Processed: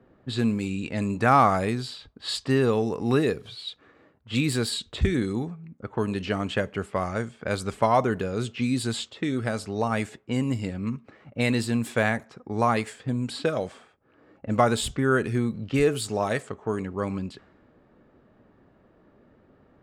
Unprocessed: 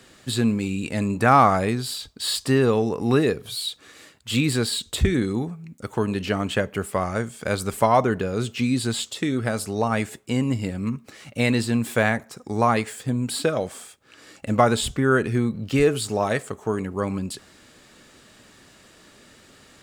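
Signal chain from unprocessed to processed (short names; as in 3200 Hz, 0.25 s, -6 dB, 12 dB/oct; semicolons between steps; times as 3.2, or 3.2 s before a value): low-pass opened by the level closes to 800 Hz, open at -19 dBFS; gain -3 dB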